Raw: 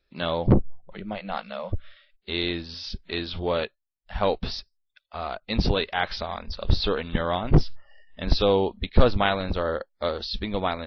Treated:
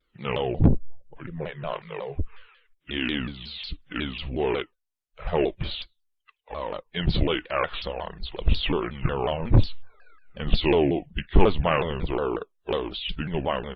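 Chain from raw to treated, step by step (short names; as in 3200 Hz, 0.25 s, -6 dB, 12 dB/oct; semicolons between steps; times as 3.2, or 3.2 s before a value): bin magnitudes rounded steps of 15 dB; varispeed -21%; shaped vibrato saw down 5.5 Hz, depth 250 cents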